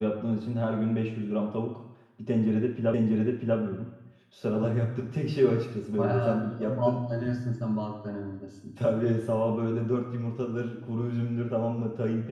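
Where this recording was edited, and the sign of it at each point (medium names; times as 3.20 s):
2.94 s: repeat of the last 0.64 s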